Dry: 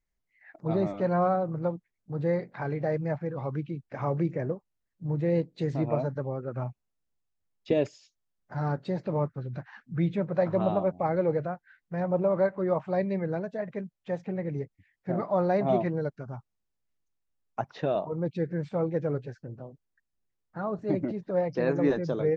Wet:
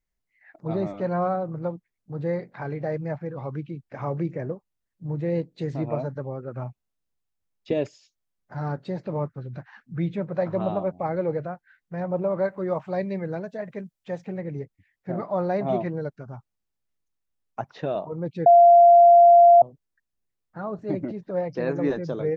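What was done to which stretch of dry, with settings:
12.44–14.41 s: treble shelf 3.7 kHz +6.5 dB
18.46–19.62 s: bleep 691 Hz -9 dBFS

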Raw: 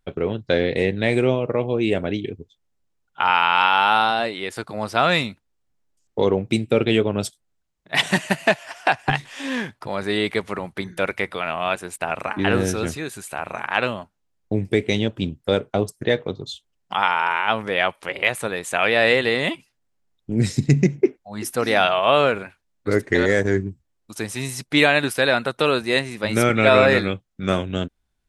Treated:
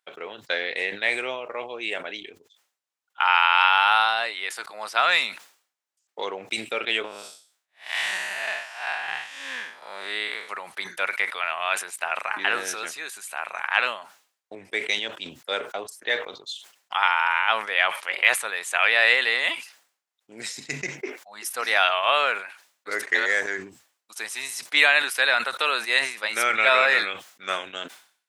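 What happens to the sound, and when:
7.04–10.49 s: spectral blur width 176 ms
14.55–16.03 s: three bands expanded up and down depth 40%
whole clip: high-pass 950 Hz 12 dB/octave; dynamic bell 1.9 kHz, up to +3 dB, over -34 dBFS, Q 1.1; decay stretcher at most 120 dB/s; trim -1 dB

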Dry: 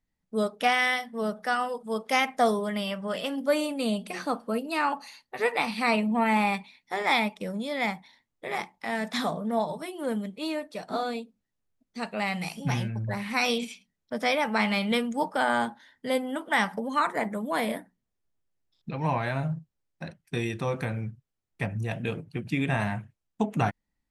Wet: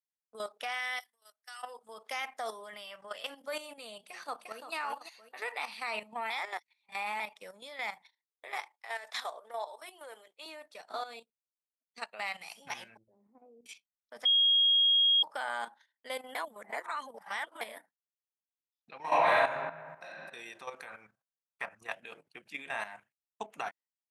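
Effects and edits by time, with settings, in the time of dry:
1.00–1.63 s: differentiator
4.04–4.73 s: echo throw 350 ms, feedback 30%, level -6.5 dB
6.30–7.20 s: reverse
8.58–10.46 s: high-pass 360 Hz 24 dB/octave
11.20–12.33 s: transient shaper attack +2 dB, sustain -11 dB
12.97–13.66 s: four-pole ladder low-pass 430 Hz, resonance 40%
14.25–15.23 s: bleep 3.27 kHz -17 dBFS
16.35–17.61 s: reverse
19.01–20.07 s: reverb throw, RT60 1.3 s, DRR -12 dB
20.87–21.92 s: peaking EQ 1.2 kHz +11.5 dB 0.91 oct
whole clip: gate -47 dBFS, range -17 dB; high-pass 750 Hz 12 dB/octave; level held to a coarse grid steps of 11 dB; trim -2.5 dB

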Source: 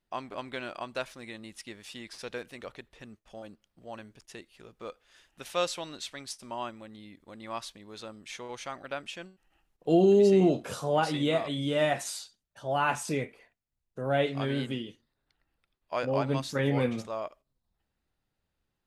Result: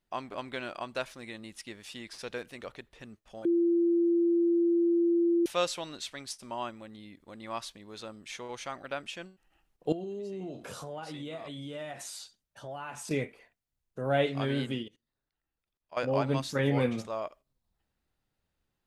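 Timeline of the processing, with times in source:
3.45–5.46 s: bleep 341 Hz -22 dBFS
9.92–13.11 s: compression 4:1, threshold -39 dBFS
14.83–15.97 s: level held to a coarse grid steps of 22 dB

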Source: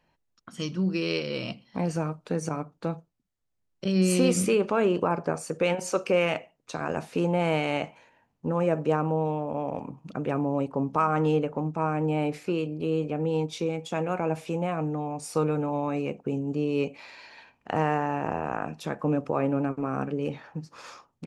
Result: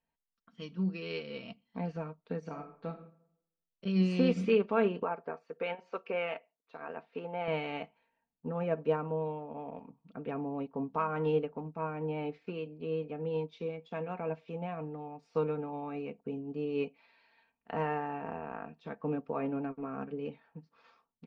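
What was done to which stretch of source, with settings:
2.39–2.95 s: reverb throw, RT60 0.81 s, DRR 3.5 dB
5.03–7.48 s: tone controls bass -13 dB, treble -10 dB
whole clip: low-pass 4.1 kHz 24 dB/octave; comb 4.4 ms, depth 55%; upward expansion 1.5:1, over -45 dBFS; trim -5.5 dB

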